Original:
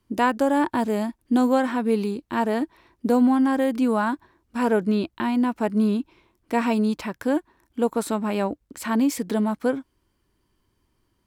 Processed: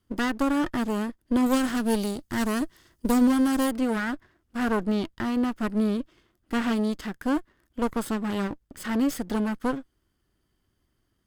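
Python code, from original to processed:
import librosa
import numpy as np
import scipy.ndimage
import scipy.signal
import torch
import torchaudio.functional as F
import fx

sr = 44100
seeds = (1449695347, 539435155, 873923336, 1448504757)

y = fx.lower_of_two(x, sr, delay_ms=0.62)
y = fx.bass_treble(y, sr, bass_db=3, treble_db=12, at=(1.46, 3.71))
y = y * librosa.db_to_amplitude(-2.5)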